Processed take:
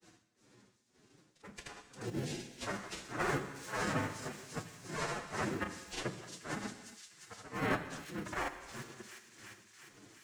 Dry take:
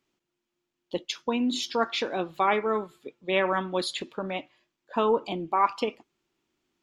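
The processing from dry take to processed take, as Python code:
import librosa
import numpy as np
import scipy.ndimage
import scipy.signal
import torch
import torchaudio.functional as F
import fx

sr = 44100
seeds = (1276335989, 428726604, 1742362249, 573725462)

p1 = fx.noise_vocoder(x, sr, seeds[0], bands=3)
p2 = fx.auto_swell(p1, sr, attack_ms=335.0)
p3 = fx.sample_hold(p2, sr, seeds[1], rate_hz=1200.0, jitter_pct=0)
p4 = p2 + (p3 * librosa.db_to_amplitude(-9.5))
p5 = fx.granulator(p4, sr, seeds[2], grain_ms=100.0, per_s=20.0, spray_ms=37.0, spread_st=0)
p6 = p5 * (1.0 - 0.99 / 2.0 + 0.99 / 2.0 * np.cos(2.0 * np.pi * 2.7 * (np.arange(len(p5)) / sr)))
p7 = fx.stretch_vocoder(p6, sr, factor=1.5)
p8 = p7 + fx.echo_wet_highpass(p7, sr, ms=351, feedback_pct=53, hz=4600.0, wet_db=-6.5, dry=0)
p9 = fx.rev_gated(p8, sr, seeds[3], gate_ms=320, shape='falling', drr_db=8.5)
y = fx.band_squash(p9, sr, depth_pct=70)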